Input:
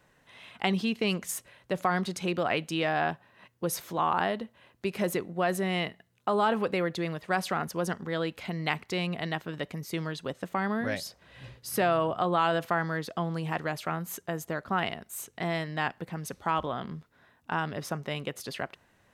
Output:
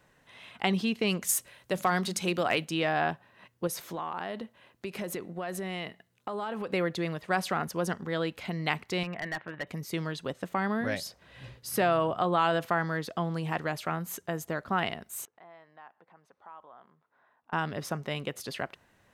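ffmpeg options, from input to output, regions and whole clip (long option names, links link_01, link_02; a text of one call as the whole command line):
ffmpeg -i in.wav -filter_complex "[0:a]asettb=1/sr,asplit=3[link_01][link_02][link_03];[link_01]atrim=end=1.224[link_04];[link_02]atrim=start=1.22:end=2.65,asetpts=PTS-STARTPTS,afade=type=in:duration=0.004:curve=qsin,afade=type=out:start_time=1.426:duration=0.004:curve=qsin,highshelf=frequency=4300:gain=9,bandreject=frequency=50:width_type=h:width=6,bandreject=frequency=100:width_type=h:width=6,bandreject=frequency=150:width_type=h:width=6,bandreject=frequency=200:width_type=h:width=6,bandreject=frequency=250:width_type=h:width=6,asoftclip=type=hard:threshold=-15dB[link_05];[link_03]atrim=start=2.646[link_06];[link_04][link_05]acrossfade=duration=0.004:curve1=hsin:curve2=qsin[link_07];[link_07][link_06]acrossfade=duration=0.004:curve1=qsin:curve2=hsin,asettb=1/sr,asplit=3[link_08][link_09][link_10];[link_08]atrim=end=3.674[link_11];[link_09]atrim=start=3.67:end=6.72,asetpts=PTS-STARTPTS,afade=type=in:duration=0.004:curve=qsin,afade=type=out:start_time=3.046:duration=0.004:curve=qsin,equalizer=frequency=65:width_type=o:width=1.9:gain=-5.5,acompressor=threshold=-32dB:ratio=4:attack=3.2:release=140:knee=1:detection=peak[link_12];[link_10]atrim=start=6.716[link_13];[link_11][link_12]acrossfade=duration=0.004:curve1=hsin:curve2=qsin[link_14];[link_14][link_13]acrossfade=duration=0.004:curve1=qsin:curve2=hsin,asettb=1/sr,asplit=3[link_15][link_16][link_17];[link_15]atrim=end=9.034[link_18];[link_16]atrim=start=9.03:end=9.67,asetpts=PTS-STARTPTS,afade=type=in:duration=0.004:curve=qsin,afade=type=out:start_time=0.636:duration=0.004:curve=qsin,highpass=120,equalizer=frequency=160:width_type=q:width=4:gain=-6,equalizer=frequency=260:width_type=q:width=4:gain=-9,equalizer=frequency=420:width_type=q:width=4:gain=-7,equalizer=frequency=1800:width_type=q:width=4:gain=6,lowpass=frequency=2600:width=0.5412,lowpass=frequency=2600:width=1.3066,volume=28.5dB,asoftclip=hard,volume=-28.5dB[link_19];[link_17]atrim=start=9.666[link_20];[link_18][link_19]acrossfade=duration=0.004:curve1=hsin:curve2=qsin[link_21];[link_21][link_20]acrossfade=duration=0.004:curve1=qsin:curve2=hsin,asettb=1/sr,asplit=3[link_22][link_23][link_24];[link_22]atrim=end=15.254[link_25];[link_23]atrim=start=15.25:end=17.53,asetpts=PTS-STARTPTS,afade=type=in:duration=0.004:curve=qsin,afade=type=out:start_time=2.276:duration=0.004:curve=qsin,acompressor=threshold=-57dB:ratio=2:attack=3.2:release=140:knee=1:detection=peak,bandpass=frequency=930:width_type=q:width=1.4[link_26];[link_24]atrim=start=17.526[link_27];[link_25][link_26]acrossfade=duration=0.004:curve1=hsin:curve2=qsin[link_28];[link_28][link_27]acrossfade=duration=0.004:curve1=qsin:curve2=hsin" out.wav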